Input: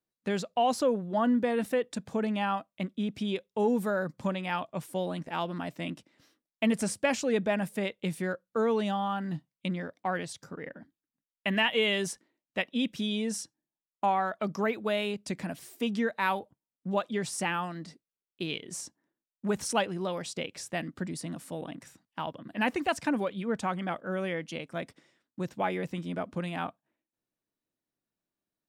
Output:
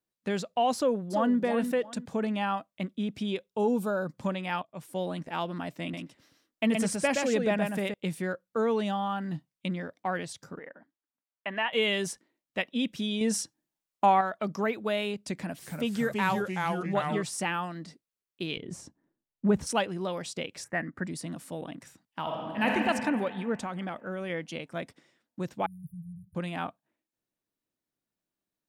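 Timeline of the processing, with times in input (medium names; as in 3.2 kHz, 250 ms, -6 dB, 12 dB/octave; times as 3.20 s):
0.76–1.37 s: echo throw 340 ms, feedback 25%, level -8.5 dB
3.50–4.07 s: Butterworth band-stop 1.9 kHz, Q 2.6
4.62–5.02 s: fade in, from -17 dB
5.81–7.94 s: delay 122 ms -4 dB
10.59–11.73 s: band-pass filter 980 Hz, Q 0.79
13.21–14.21 s: gain +5 dB
15.37–17.23 s: ever faster or slower copies 277 ms, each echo -2 st, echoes 3
18.57–19.67 s: tilt EQ -3 dB/octave
20.64–21.04 s: resonant high shelf 2.5 kHz -10.5 dB, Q 3
22.20–22.73 s: reverb throw, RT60 2.4 s, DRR -2 dB
23.63–24.30 s: compression 4:1, threshold -31 dBFS
25.66–26.35 s: brick-wall FIR band-stop 180–9500 Hz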